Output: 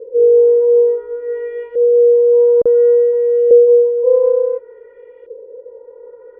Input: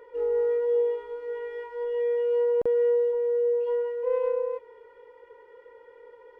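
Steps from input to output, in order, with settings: LFO low-pass saw up 0.57 Hz 470–2900 Hz; resonant low shelf 670 Hz +6.5 dB, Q 3

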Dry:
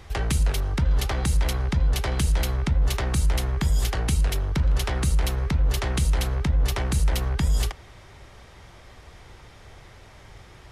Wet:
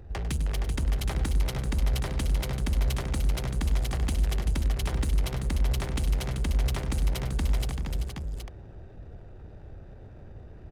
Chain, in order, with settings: Wiener smoothing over 41 samples; power-law curve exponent 0.7; tapped delay 99/385/469/770 ms -12/-7/-5.5/-6 dB; gain -8 dB

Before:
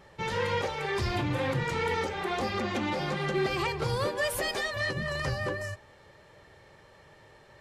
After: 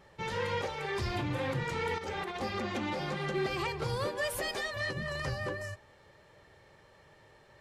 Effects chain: 1.98–2.41 negative-ratio compressor -33 dBFS, ratio -0.5; gain -4 dB

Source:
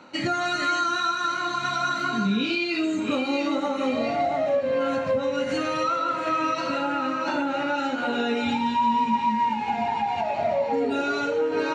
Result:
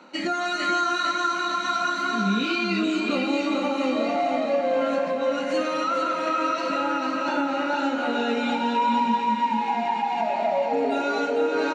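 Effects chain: elliptic high-pass 180 Hz, stop band 40 dB; on a send: feedback echo 0.449 s, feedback 44%, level -5 dB

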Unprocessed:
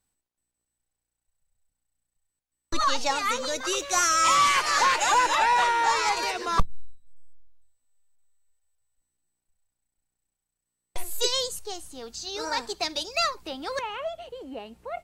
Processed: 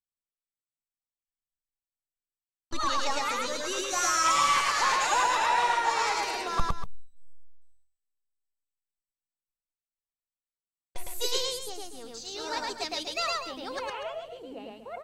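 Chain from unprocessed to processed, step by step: gate with hold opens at -47 dBFS; loudspeakers at several distances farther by 37 m -1 dB, 83 m -11 dB; harmoniser -5 st -17 dB; gain -6 dB

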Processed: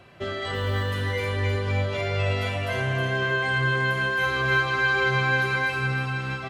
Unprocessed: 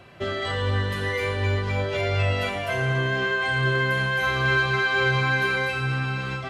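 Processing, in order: 0.54–0.99 short-mantissa float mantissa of 4-bit; on a send: feedback echo 0.315 s, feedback 24%, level -6 dB; on the sum: gain -2.5 dB

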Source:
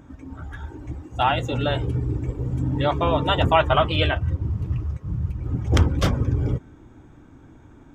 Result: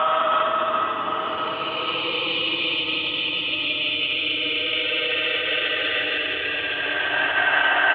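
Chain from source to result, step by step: Paulstretch 26×, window 0.10 s, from 3.82; limiter -15 dBFS, peak gain reduction 9 dB; echo 1.06 s -9 dB; vocal rider within 4 dB 2 s; speaker cabinet 470–4700 Hz, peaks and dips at 600 Hz -4 dB, 880 Hz +3 dB, 1300 Hz +8 dB, 1800 Hz +7 dB, 2800 Hz +6 dB, 4200 Hz -4 dB; gain +1.5 dB

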